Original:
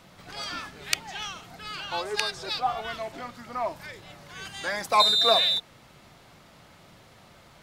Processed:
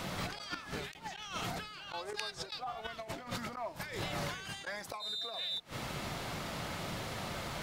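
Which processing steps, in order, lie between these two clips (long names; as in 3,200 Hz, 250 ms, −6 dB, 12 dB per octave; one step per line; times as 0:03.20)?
gate with flip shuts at −24 dBFS, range −24 dB
compressor whose output falls as the input rises −49 dBFS, ratio −1
level +8 dB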